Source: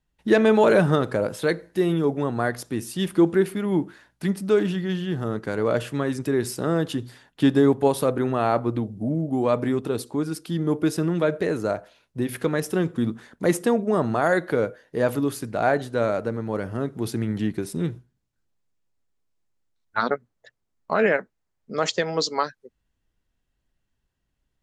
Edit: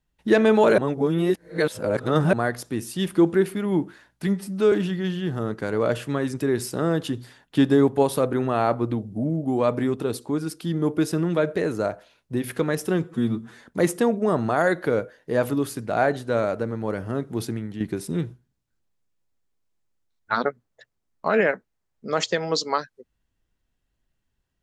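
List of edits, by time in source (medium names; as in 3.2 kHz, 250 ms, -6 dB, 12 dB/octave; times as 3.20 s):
0.78–2.33 s: reverse
4.27–4.57 s: stretch 1.5×
12.89–13.28 s: stretch 1.5×
17.10–17.46 s: fade out quadratic, to -8.5 dB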